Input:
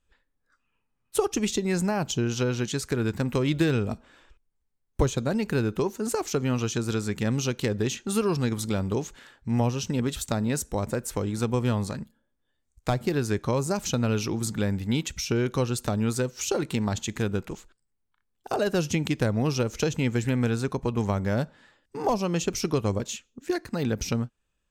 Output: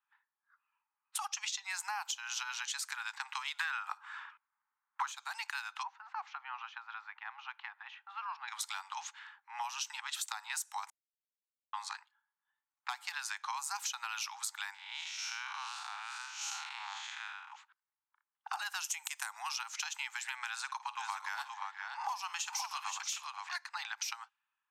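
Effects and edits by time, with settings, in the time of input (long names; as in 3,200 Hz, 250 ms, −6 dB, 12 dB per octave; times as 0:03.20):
0:01.28–0:01.70: high shelf with overshoot 7,800 Hz −9 dB, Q 1.5
0:03.59–0:05.12: parametric band 1,300 Hz +14.5 dB 1.7 octaves
0:05.83–0:08.48: head-to-tape spacing loss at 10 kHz 41 dB
0:10.90–0:11.73: silence
0:14.74–0:17.52: spectrum smeared in time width 196 ms
0:18.84–0:19.49: high shelf with overshoot 5,900 Hz +9 dB, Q 1.5
0:20.48–0:23.56: multi-tap delay 53/482/523 ms −16.5/−14.5/−6.5 dB
whole clip: Butterworth high-pass 810 Hz 96 dB per octave; low-pass that shuts in the quiet parts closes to 1,500 Hz, open at −32.5 dBFS; downward compressor 5 to 1, threshold −36 dBFS; level +1 dB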